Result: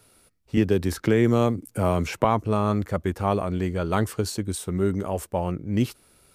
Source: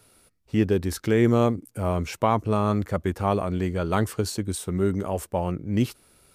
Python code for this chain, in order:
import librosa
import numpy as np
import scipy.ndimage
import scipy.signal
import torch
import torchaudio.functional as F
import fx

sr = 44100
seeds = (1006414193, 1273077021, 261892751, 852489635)

y = fx.band_squash(x, sr, depth_pct=70, at=(0.57, 2.25))